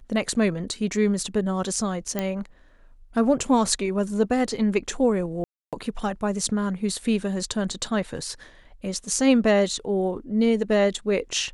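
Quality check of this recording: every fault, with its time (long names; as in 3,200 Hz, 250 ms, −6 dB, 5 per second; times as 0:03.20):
0:02.19: click −11 dBFS
0:05.44–0:05.73: drop-out 287 ms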